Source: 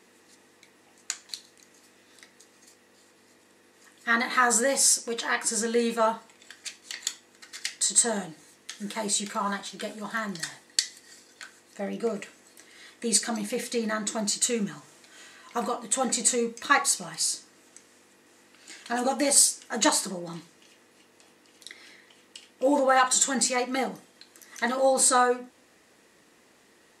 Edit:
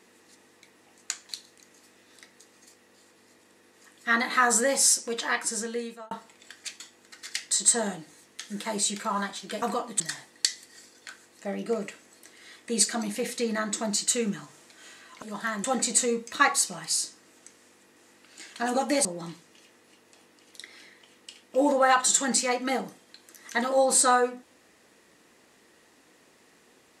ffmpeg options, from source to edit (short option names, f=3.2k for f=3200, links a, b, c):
-filter_complex "[0:a]asplit=8[a][b][c][d][e][f][g][h];[a]atrim=end=6.11,asetpts=PTS-STARTPTS,afade=t=out:st=5.3:d=0.81[i];[b]atrim=start=6.11:end=6.802,asetpts=PTS-STARTPTS,afade=t=in:d=0.004:c=hsin[j];[c]atrim=start=7.098:end=9.922[k];[d]atrim=start=15.558:end=15.942[l];[e]atrim=start=10.338:end=15.562[m];[f]atrim=start=9.918:end=10.342[n];[g]atrim=start=15.938:end=19.352[o];[h]atrim=start=20.118[p];[i][j]concat=n=2:v=0:a=1[q];[q][k]acrossfade=d=0.004:c1=hsin:c2=hsin[r];[r][l]acrossfade=d=0.004:c1=hsin:c2=hsin[s];[s][m]acrossfade=d=0.004:c1=hsin:c2=hsin[t];[t][n]acrossfade=d=0.004:c1=hsin:c2=hsin[u];[u][o]acrossfade=d=0.004:c1=hsin:c2=hsin[v];[v][p]acrossfade=d=0.004:c1=hsin:c2=hsin"